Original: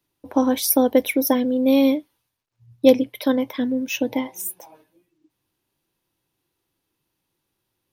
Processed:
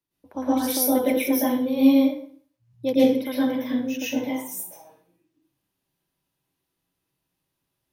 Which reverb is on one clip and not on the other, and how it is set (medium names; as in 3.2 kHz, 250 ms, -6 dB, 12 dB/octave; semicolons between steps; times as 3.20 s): plate-style reverb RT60 0.51 s, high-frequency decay 0.8×, pre-delay 100 ms, DRR -9.5 dB; trim -12.5 dB